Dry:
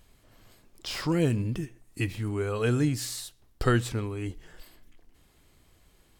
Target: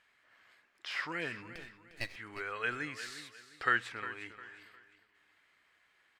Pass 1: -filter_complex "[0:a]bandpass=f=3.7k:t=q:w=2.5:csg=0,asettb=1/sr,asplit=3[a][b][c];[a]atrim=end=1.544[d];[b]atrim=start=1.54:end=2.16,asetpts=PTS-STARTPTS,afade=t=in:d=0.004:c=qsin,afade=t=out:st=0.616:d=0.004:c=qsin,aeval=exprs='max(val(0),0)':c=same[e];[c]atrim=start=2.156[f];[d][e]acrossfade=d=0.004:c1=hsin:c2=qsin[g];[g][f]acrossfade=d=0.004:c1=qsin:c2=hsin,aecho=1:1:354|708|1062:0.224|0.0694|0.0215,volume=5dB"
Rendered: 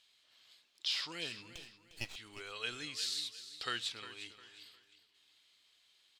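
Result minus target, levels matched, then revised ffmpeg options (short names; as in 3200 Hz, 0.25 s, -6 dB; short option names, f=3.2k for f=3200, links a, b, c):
4000 Hz band +11.0 dB
-filter_complex "[0:a]bandpass=f=1.8k:t=q:w=2.5:csg=0,asettb=1/sr,asplit=3[a][b][c];[a]atrim=end=1.544[d];[b]atrim=start=1.54:end=2.16,asetpts=PTS-STARTPTS,afade=t=in:d=0.004:c=qsin,afade=t=out:st=0.616:d=0.004:c=qsin,aeval=exprs='max(val(0),0)':c=same[e];[c]atrim=start=2.156[f];[d][e]acrossfade=d=0.004:c1=hsin:c2=qsin[g];[g][f]acrossfade=d=0.004:c1=qsin:c2=hsin,aecho=1:1:354|708|1062:0.224|0.0694|0.0215,volume=5dB"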